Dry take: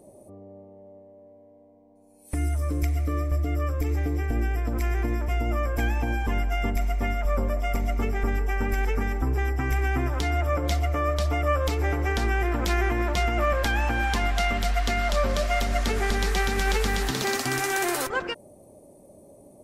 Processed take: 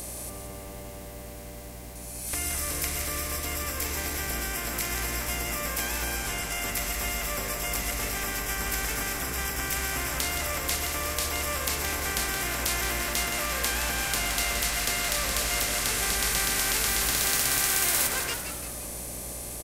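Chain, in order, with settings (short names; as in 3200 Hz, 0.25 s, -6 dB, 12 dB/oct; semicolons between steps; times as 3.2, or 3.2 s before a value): per-bin compression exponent 0.4; 6.16–6.56 Chebyshev low-pass 11000 Hz, order 2; pre-emphasis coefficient 0.9; in parallel at -6 dB: soft clip -25 dBFS, distortion -14 dB; on the sum: hum 60 Hz, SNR 14 dB; on a send: frequency-shifting echo 0.171 s, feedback 52%, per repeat -110 Hz, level -7.5 dB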